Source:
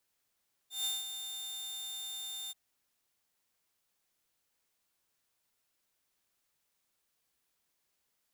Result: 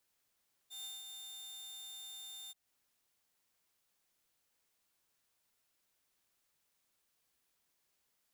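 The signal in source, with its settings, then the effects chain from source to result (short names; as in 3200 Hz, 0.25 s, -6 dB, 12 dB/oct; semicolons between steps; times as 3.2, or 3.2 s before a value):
ADSR saw 3610 Hz, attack 0.15 s, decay 0.188 s, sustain -8.5 dB, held 1.81 s, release 24 ms -28.5 dBFS
compressor 2.5:1, threshold -51 dBFS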